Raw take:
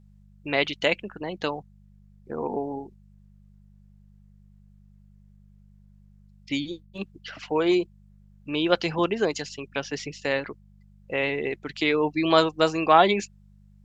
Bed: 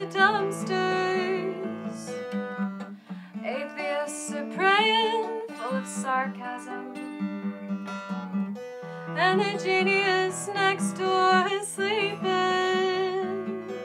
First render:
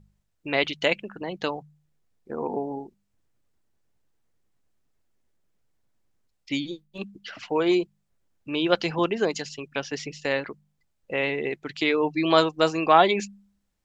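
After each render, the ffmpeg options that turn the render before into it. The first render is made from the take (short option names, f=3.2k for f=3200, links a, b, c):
-af "bandreject=f=50:t=h:w=4,bandreject=f=100:t=h:w=4,bandreject=f=150:t=h:w=4,bandreject=f=200:t=h:w=4"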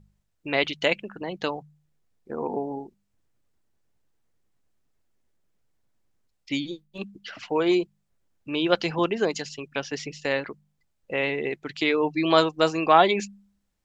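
-af anull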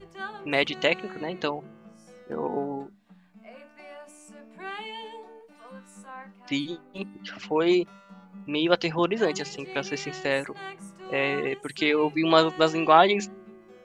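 -filter_complex "[1:a]volume=-16dB[a];[0:a][a]amix=inputs=2:normalize=0"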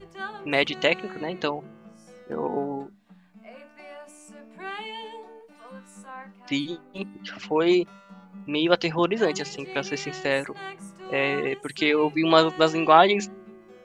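-af "volume=1.5dB"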